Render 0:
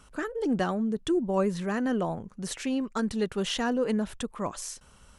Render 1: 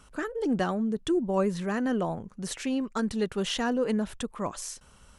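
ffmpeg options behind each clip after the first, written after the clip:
-af anull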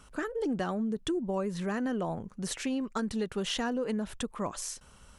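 -af "acompressor=threshold=-28dB:ratio=6"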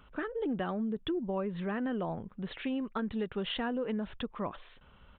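-af "aresample=8000,aresample=44100,volume=-2dB"

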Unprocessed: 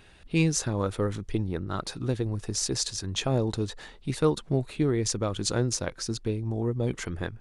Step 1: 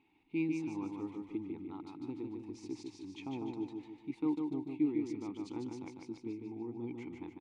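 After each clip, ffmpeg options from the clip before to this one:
-filter_complex "[0:a]asplit=3[a][b][c];[a]bandpass=f=300:t=q:w=8,volume=0dB[d];[b]bandpass=f=870:t=q:w=8,volume=-6dB[e];[c]bandpass=f=2.24k:t=q:w=8,volume=-9dB[f];[d][e][f]amix=inputs=3:normalize=0,aecho=1:1:149|298|447|596|745|894:0.596|0.28|0.132|0.0618|0.0291|0.0137,volume=-1.5dB"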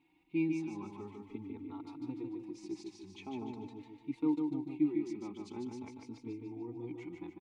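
-filter_complex "[0:a]asplit=2[a][b];[b]adelay=3.7,afreqshift=0.44[c];[a][c]amix=inputs=2:normalize=1,volume=2.5dB"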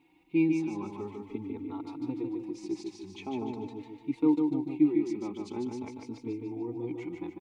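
-af "equalizer=f=520:w=1.6:g=5.5,volume=5.5dB"

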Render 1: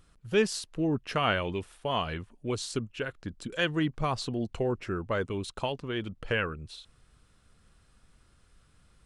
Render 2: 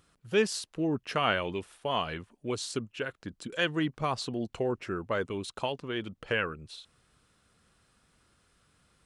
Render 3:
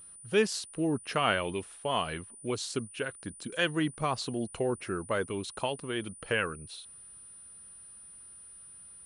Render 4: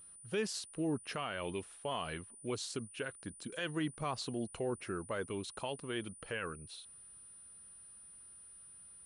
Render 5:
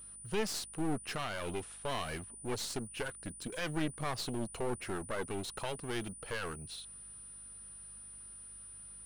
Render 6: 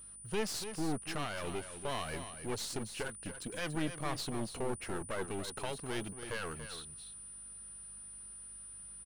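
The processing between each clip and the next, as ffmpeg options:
-af "highpass=f=170:p=1"
-af "aeval=exprs='val(0)+0.00398*sin(2*PI*9400*n/s)':c=same"
-af "alimiter=limit=-22dB:level=0:latency=1:release=45,volume=-5dB"
-af "aeval=exprs='val(0)+0.000355*(sin(2*PI*50*n/s)+sin(2*PI*2*50*n/s)/2+sin(2*PI*3*50*n/s)/3+sin(2*PI*4*50*n/s)/4+sin(2*PI*5*50*n/s)/5)':c=same,aeval=exprs='clip(val(0),-1,0.00473)':c=same,volume=5dB"
-af "aecho=1:1:285:0.316,volume=-1dB"

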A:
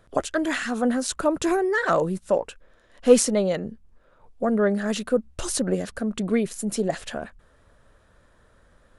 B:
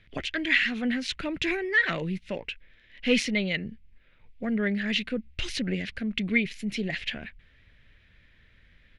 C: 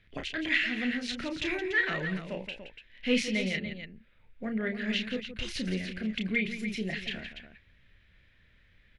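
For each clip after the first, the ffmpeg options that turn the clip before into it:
-af "firequalizer=gain_entry='entry(110,0);entry(550,-14);entry(1200,-14);entry(2100,13);entry(7900,-20)':delay=0.05:min_phase=1"
-af "aecho=1:1:32.07|169.1|288.6:0.501|0.282|0.316,volume=-5dB"

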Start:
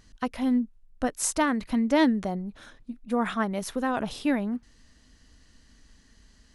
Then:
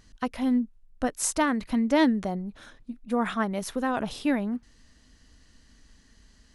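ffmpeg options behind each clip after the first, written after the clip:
-af anull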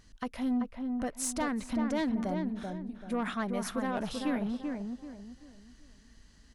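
-filter_complex "[0:a]alimiter=limit=-17dB:level=0:latency=1:release=296,asoftclip=type=tanh:threshold=-22.5dB,asplit=2[a][b];[b]adelay=386,lowpass=f=1.5k:p=1,volume=-4dB,asplit=2[c][d];[d]adelay=386,lowpass=f=1.5k:p=1,volume=0.35,asplit=2[e][f];[f]adelay=386,lowpass=f=1.5k:p=1,volume=0.35,asplit=2[g][h];[h]adelay=386,lowpass=f=1.5k:p=1,volume=0.35[i];[a][c][e][g][i]amix=inputs=5:normalize=0,volume=-2.5dB"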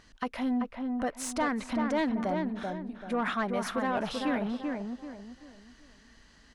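-filter_complex "[0:a]asplit=2[a][b];[b]highpass=f=720:p=1,volume=12dB,asoftclip=type=tanh:threshold=-21dB[c];[a][c]amix=inputs=2:normalize=0,lowpass=f=2.3k:p=1,volume=-6dB,volume=2dB"

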